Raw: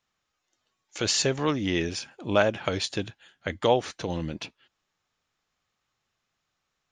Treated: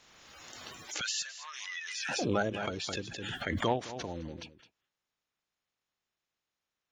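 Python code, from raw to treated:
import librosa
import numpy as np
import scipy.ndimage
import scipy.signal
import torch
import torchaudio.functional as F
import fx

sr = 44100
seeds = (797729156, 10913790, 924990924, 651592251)

y = fx.spec_quant(x, sr, step_db=30)
y = fx.highpass(y, sr, hz=1400.0, slope=24, at=(1.01, 2.09))
y = fx.cheby_harmonics(y, sr, harmonics=(3,), levels_db=(-25,), full_scale_db=-8.0)
y = y + 10.0 ** (-15.5 / 20.0) * np.pad(y, (int(212 * sr / 1000.0), 0))[:len(y)]
y = fx.pre_swell(y, sr, db_per_s=27.0)
y = F.gain(torch.from_numpy(y), -7.5).numpy()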